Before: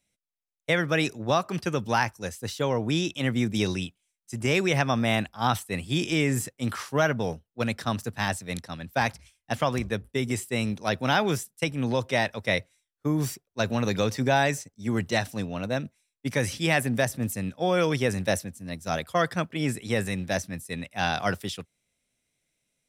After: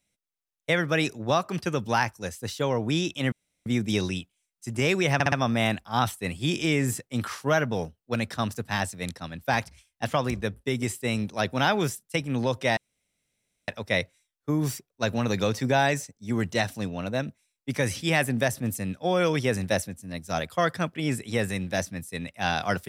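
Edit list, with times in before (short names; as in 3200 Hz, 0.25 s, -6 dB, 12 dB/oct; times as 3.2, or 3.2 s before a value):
3.32 insert room tone 0.34 s
4.8 stutter 0.06 s, 4 plays
12.25 insert room tone 0.91 s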